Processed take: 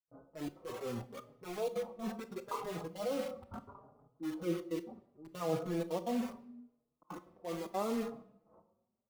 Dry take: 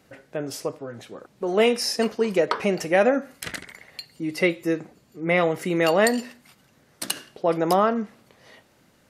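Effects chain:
noise gate −50 dBFS, range −27 dB
Butterworth low-pass 1,300 Hz 96 dB per octave
far-end echo of a speakerphone 100 ms, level −19 dB
reversed playback
downward compressor 8 to 1, threshold −30 dBFS, peak gain reduction 15.5 dB
reversed playback
transient designer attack −10 dB, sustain +3 dB
gate pattern ".xxxxx.xxxxxx.x" 188 BPM −60 dB
in parallel at −6 dB: wrap-around overflow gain 37.5 dB
on the sum: convolution reverb RT60 0.95 s, pre-delay 22 ms, DRR 10 dB
noise reduction from a noise print of the clip's start 8 dB
barber-pole flanger 4.4 ms +0.74 Hz
level +1.5 dB

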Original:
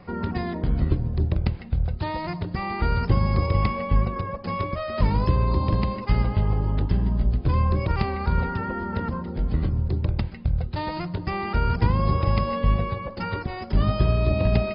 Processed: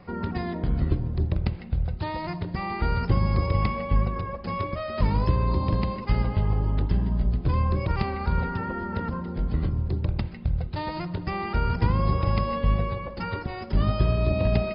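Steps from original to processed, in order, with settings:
spring reverb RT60 2.3 s, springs 57 ms, chirp 30 ms, DRR 16 dB
level −2 dB

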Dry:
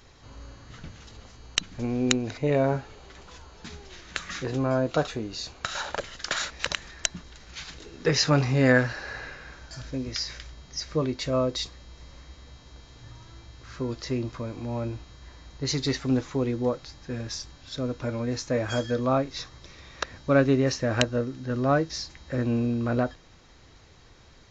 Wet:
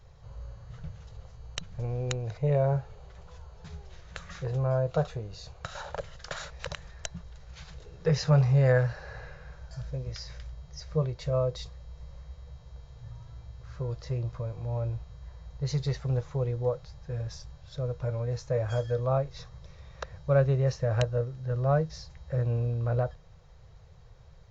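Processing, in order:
drawn EQ curve 160 Hz 0 dB, 260 Hz −27 dB, 490 Hz −4 dB, 2,200 Hz −15 dB
level +3 dB

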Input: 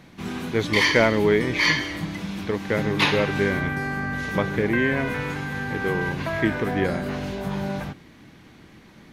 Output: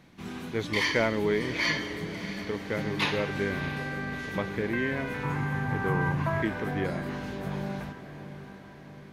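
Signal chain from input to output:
0:05.23–0:06.42: octave-band graphic EQ 125/1,000/4,000 Hz +12/+10/−6 dB
on a send: feedback delay with all-pass diffusion 656 ms, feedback 59%, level −13 dB
on the sum: level −7.5 dB

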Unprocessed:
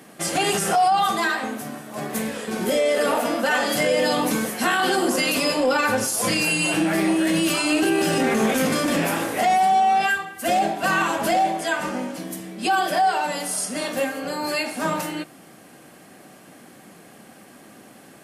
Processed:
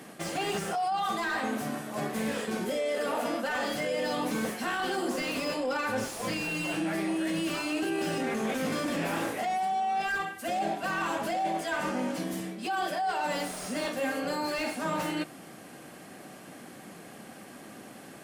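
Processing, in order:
high-shelf EQ 10,000 Hz −3.5 dB
reversed playback
downward compressor 12 to 1, threshold −27 dBFS, peak gain reduction 12.5 dB
reversed playback
slew-rate limiting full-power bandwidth 68 Hz

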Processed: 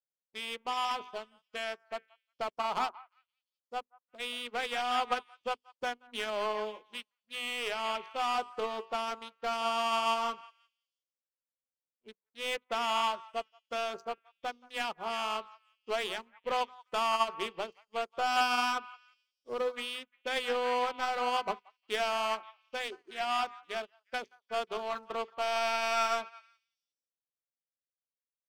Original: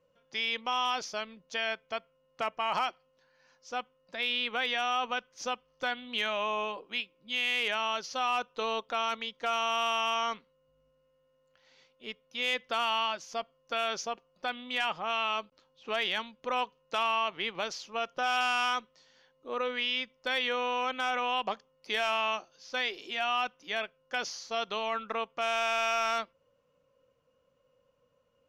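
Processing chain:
adaptive Wiener filter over 25 samples
dynamic equaliser 390 Hz, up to +6 dB, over −58 dBFS, Q 5.1
mains-hum notches 50/100/150/200/250/300/350/400/450 Hz
leveller curve on the samples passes 2
on a send: echo through a band-pass that steps 177 ms, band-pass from 1,100 Hz, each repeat 0.7 octaves, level −6 dB
on the sum: expander for the loud parts 2.5 to 1, over −49 dBFS

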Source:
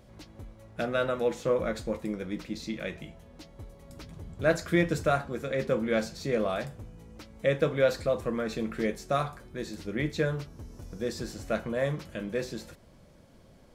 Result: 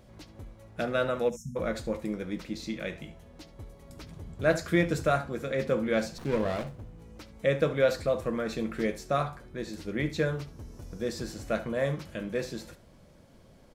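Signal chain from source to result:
0:01.30–0:01.56: time-frequency box erased 240–5,200 Hz
0:09.08–0:09.69: high-shelf EQ 5,300 Hz −5.5 dB
on a send: single-tap delay 71 ms −16.5 dB
0:06.18–0:07.02: on the sum: windowed peak hold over 17 samples

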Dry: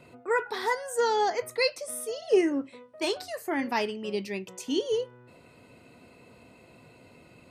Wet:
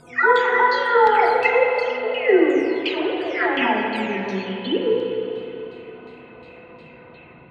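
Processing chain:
every frequency bin delayed by itself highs early, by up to 621 ms
auto-filter low-pass saw down 2.8 Hz 990–3,900 Hz
spring reverb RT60 3.1 s, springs 32/36/50 ms, chirp 50 ms, DRR 0 dB
level +7 dB

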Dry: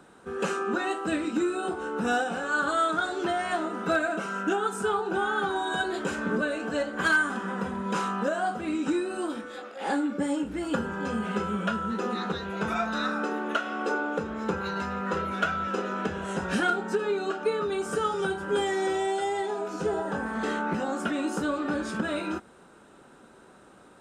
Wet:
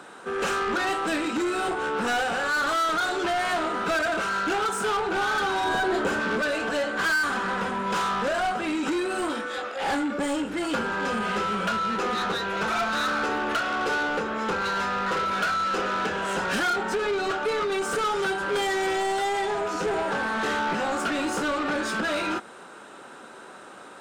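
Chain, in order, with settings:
mid-hump overdrive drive 22 dB, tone 6,600 Hz, clips at −15.5 dBFS
0:05.64–0:06.20: tilt shelving filter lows +5 dB, about 1,400 Hz
level −3.5 dB

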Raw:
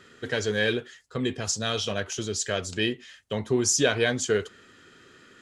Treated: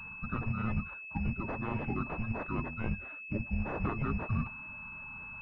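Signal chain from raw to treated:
spectral magnitudes quantised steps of 30 dB
frequency shifter −330 Hz
reversed playback
downward compressor 4 to 1, threshold −35 dBFS, peak gain reduction 14.5 dB
reversed playback
hard clipping −25.5 dBFS, distortion −32 dB
switching amplifier with a slow clock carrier 2,600 Hz
level +4.5 dB

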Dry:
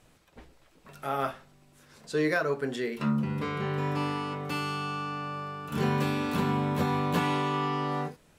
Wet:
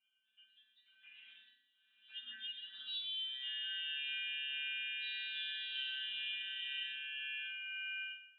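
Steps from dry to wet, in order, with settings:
decimation without filtering 8×
Chebyshev high-pass filter 240 Hz, order 2
low-shelf EQ 250 Hz −10 dB
compressor whose output falls as the input rises −34 dBFS, ratio −1
resonances in every octave A, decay 0.75 s
voice inversion scrambler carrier 3,300 Hz
flutter between parallel walls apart 10.1 metres, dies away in 0.43 s
delay with pitch and tempo change per echo 232 ms, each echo +2 semitones, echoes 2
treble cut that deepens with the level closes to 2,200 Hz, closed at −40 dBFS
level +6.5 dB

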